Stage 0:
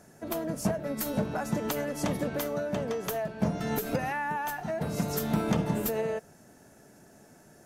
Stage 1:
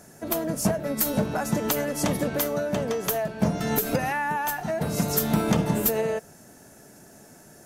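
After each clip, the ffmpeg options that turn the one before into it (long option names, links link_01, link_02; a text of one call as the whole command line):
ffmpeg -i in.wav -af "highshelf=frequency=5200:gain=6.5,volume=4.5dB" out.wav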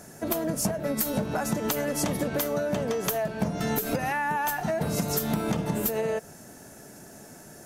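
ffmpeg -i in.wav -af "acompressor=threshold=-27dB:ratio=6,volume=3dB" out.wav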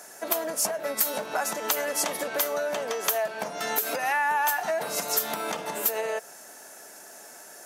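ffmpeg -i in.wav -af "highpass=650,volume=4dB" out.wav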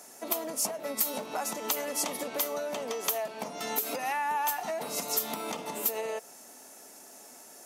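ffmpeg -i in.wav -af "equalizer=frequency=250:width_type=o:width=0.33:gain=8,equalizer=frequency=630:width_type=o:width=0.33:gain=-3,equalizer=frequency=1600:width_type=o:width=0.33:gain=-11,volume=-3.5dB" out.wav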